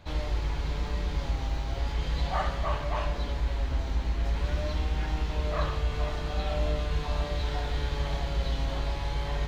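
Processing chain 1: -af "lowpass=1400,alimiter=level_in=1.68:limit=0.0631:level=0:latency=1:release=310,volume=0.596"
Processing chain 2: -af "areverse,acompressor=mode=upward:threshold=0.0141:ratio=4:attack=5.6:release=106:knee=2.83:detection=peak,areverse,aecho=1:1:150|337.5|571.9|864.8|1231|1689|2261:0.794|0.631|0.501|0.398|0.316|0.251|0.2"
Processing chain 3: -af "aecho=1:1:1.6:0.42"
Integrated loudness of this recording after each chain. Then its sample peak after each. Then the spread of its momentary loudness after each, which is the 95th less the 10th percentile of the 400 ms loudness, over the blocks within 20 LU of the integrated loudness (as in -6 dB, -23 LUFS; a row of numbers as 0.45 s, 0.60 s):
-39.0 LUFS, -26.5 LUFS, -29.0 LUFS; -28.5 dBFS, -11.5 dBFS, -13.5 dBFS; 1 LU, 2 LU, 3 LU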